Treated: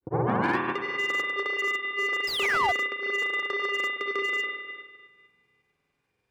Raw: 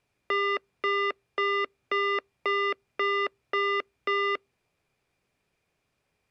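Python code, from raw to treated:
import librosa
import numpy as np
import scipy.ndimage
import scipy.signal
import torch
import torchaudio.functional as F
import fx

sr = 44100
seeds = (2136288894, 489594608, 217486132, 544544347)

y = fx.tape_start_head(x, sr, length_s=0.57)
y = fx.rider(y, sr, range_db=10, speed_s=0.5)
y = fx.notch_comb(y, sr, f0_hz=650.0)
y = fx.rev_spring(y, sr, rt60_s=1.6, pass_ms=(33,), chirp_ms=55, drr_db=-2.5)
y = fx.granulator(y, sr, seeds[0], grain_ms=100.0, per_s=20.0, spray_ms=100.0, spread_st=0)
y = fx.spec_paint(y, sr, seeds[1], shape='fall', start_s=2.27, length_s=0.45, low_hz=660.0, high_hz=5300.0, level_db=-24.0)
y = fx.slew_limit(y, sr, full_power_hz=130.0)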